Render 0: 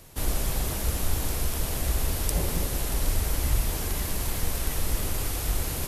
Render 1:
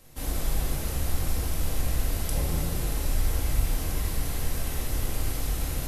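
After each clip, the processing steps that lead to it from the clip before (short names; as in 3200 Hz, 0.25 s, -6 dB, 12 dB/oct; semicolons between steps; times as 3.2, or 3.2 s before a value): reverb RT60 1.3 s, pre-delay 4 ms, DRR -2.5 dB; gain -7 dB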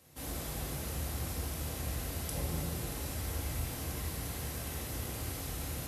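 HPF 63 Hz 24 dB/oct; gain -5.5 dB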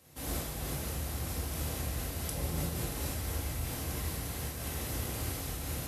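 noise-modulated level, depth 50%; gain +4.5 dB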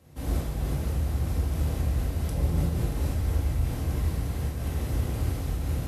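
tilt -2.5 dB/oct; gain +1.5 dB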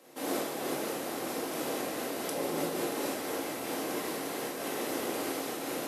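HPF 300 Hz 24 dB/oct; gain +6 dB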